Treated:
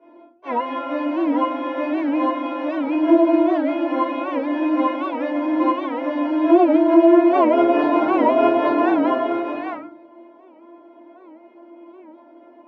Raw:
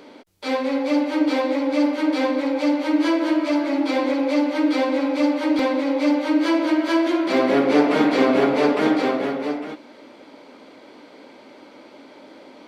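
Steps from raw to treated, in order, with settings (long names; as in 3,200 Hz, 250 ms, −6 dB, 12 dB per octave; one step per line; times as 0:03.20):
samples sorted by size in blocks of 8 samples
low-shelf EQ 360 Hz +11.5 dB
in parallel at −0.5 dB: bit reduction 4 bits
on the sum: loudspeaker in its box 240–2,400 Hz, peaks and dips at 270 Hz +4 dB, 590 Hz +8 dB, 890 Hz +10 dB
stiff-string resonator 340 Hz, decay 0.33 s, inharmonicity 0.002
rectangular room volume 320 cubic metres, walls furnished, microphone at 4.9 metres
wow of a warped record 78 rpm, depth 160 cents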